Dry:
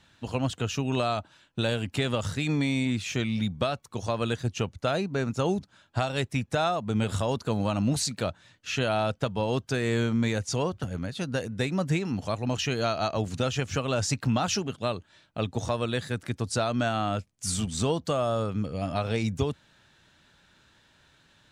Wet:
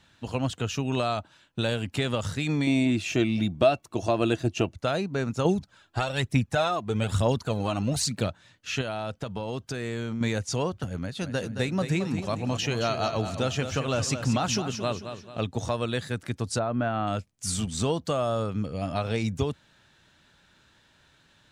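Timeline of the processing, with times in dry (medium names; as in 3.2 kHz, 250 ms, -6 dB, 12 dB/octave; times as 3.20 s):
2.67–4.75 s: small resonant body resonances 330/650/2700 Hz, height 13 dB
5.45–8.28 s: phaser 1.1 Hz
8.81–10.21 s: compression 5:1, threshold -28 dBFS
11.00–15.41 s: feedback delay 221 ms, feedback 40%, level -9 dB
16.58–17.06 s: low-pass 1.2 kHz -> 2.4 kHz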